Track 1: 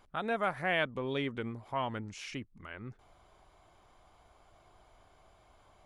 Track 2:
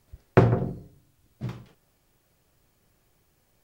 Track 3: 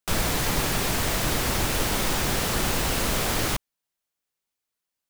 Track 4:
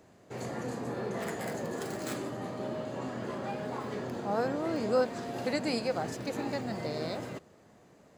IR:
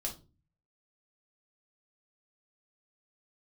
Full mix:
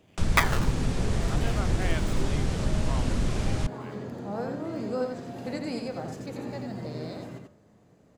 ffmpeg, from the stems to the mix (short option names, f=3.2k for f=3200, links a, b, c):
-filter_complex "[0:a]adelay=1150,volume=-5.5dB[a];[1:a]highpass=340,acrusher=samples=33:mix=1:aa=0.000001,aeval=exprs='val(0)*sin(2*PI*1700*n/s+1700*0.65/0.69*sin(2*PI*0.69*n/s))':c=same,volume=0.5dB[b];[2:a]lowpass=f=8.9k:w=0.5412,lowpass=f=8.9k:w=1.3066,lowshelf=f=400:g=9.5,acrossover=split=210[c][d];[d]acompressor=threshold=-30dB:ratio=6[e];[c][e]amix=inputs=2:normalize=0,adelay=100,volume=-5.5dB[f];[3:a]lowshelf=f=340:g=10,bandreject=f=73.54:t=h:w=4,bandreject=f=147.08:t=h:w=4,bandreject=f=220.62:t=h:w=4,bandreject=f=294.16:t=h:w=4,bandreject=f=367.7:t=h:w=4,bandreject=f=441.24:t=h:w=4,bandreject=f=514.78:t=h:w=4,bandreject=f=588.32:t=h:w=4,bandreject=f=661.86:t=h:w=4,bandreject=f=735.4:t=h:w=4,bandreject=f=808.94:t=h:w=4,bandreject=f=882.48:t=h:w=4,bandreject=f=956.02:t=h:w=4,bandreject=f=1.02956k:t=h:w=4,bandreject=f=1.1031k:t=h:w=4,bandreject=f=1.17664k:t=h:w=4,bandreject=f=1.25018k:t=h:w=4,bandreject=f=1.32372k:t=h:w=4,bandreject=f=1.39726k:t=h:w=4,bandreject=f=1.4708k:t=h:w=4,bandreject=f=1.54434k:t=h:w=4,bandreject=f=1.61788k:t=h:w=4,bandreject=f=1.69142k:t=h:w=4,bandreject=f=1.76496k:t=h:w=4,bandreject=f=1.8385k:t=h:w=4,bandreject=f=1.91204k:t=h:w=4,bandreject=f=1.98558k:t=h:w=4,bandreject=f=2.05912k:t=h:w=4,bandreject=f=2.13266k:t=h:w=4,bandreject=f=2.2062k:t=h:w=4,bandreject=f=2.27974k:t=h:w=4,bandreject=f=2.35328k:t=h:w=4,volume=-6.5dB,asplit=2[g][h];[h]volume=-5dB,aecho=0:1:87:1[i];[a][b][f][g][i]amix=inputs=5:normalize=0"